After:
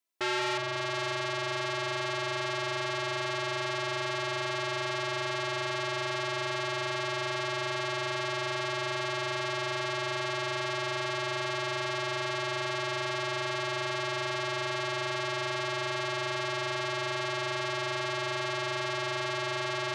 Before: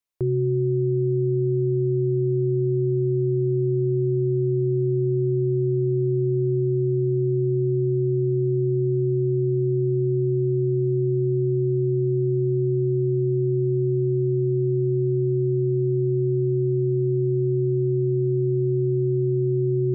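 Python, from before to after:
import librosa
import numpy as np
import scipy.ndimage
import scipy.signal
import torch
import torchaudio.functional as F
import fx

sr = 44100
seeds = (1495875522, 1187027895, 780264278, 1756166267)

y = scipy.signal.sosfilt(scipy.signal.butter(2, 170.0, 'highpass', fs=sr, output='sos'), x)
y = y + 0.7 * np.pad(y, (int(3.0 * sr / 1000.0), 0))[:len(y)]
y = fx.echo_feedback(y, sr, ms=183, feedback_pct=59, wet_db=-7)
y = fx.transformer_sat(y, sr, knee_hz=2900.0)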